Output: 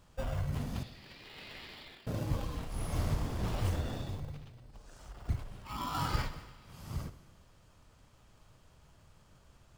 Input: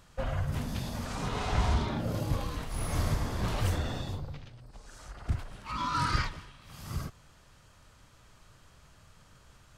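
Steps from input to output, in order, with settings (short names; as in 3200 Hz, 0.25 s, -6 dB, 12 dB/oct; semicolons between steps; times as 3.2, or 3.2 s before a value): 0.83–2.07 Chebyshev band-pass 1800–4700 Hz, order 3; in parallel at -3 dB: sample-and-hold 21×; on the sum: reverb RT60 1.4 s, pre-delay 48 ms, DRR 13.5 dB; gain -7.5 dB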